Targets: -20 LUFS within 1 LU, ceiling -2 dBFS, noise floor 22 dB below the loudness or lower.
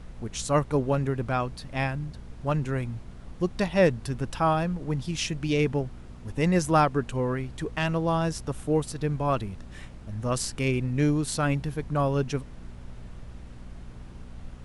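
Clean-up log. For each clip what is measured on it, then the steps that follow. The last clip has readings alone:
hum 60 Hz; harmonics up to 240 Hz; hum level -44 dBFS; noise floor -44 dBFS; noise floor target -50 dBFS; loudness -27.5 LUFS; peak -9.5 dBFS; loudness target -20.0 LUFS
-> de-hum 60 Hz, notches 4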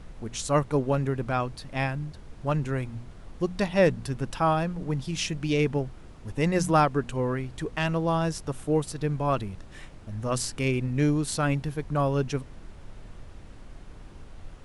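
hum none; noise floor -46 dBFS; noise floor target -50 dBFS
-> noise print and reduce 6 dB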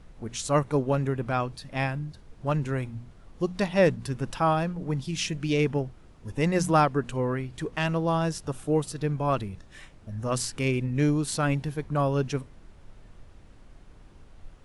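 noise floor -52 dBFS; loudness -27.5 LUFS; peak -10.0 dBFS; loudness target -20.0 LUFS
-> gain +7.5 dB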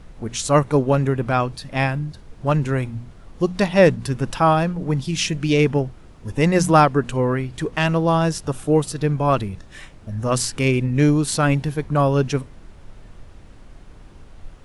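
loudness -20.0 LUFS; peak -2.5 dBFS; noise floor -44 dBFS

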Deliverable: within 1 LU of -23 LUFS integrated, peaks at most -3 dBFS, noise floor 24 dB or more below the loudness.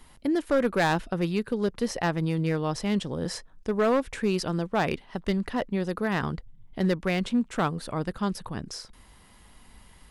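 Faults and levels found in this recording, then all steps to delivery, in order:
clipped 0.9%; flat tops at -17.5 dBFS; loudness -28.0 LUFS; peak -17.5 dBFS; loudness target -23.0 LUFS
-> clip repair -17.5 dBFS; gain +5 dB

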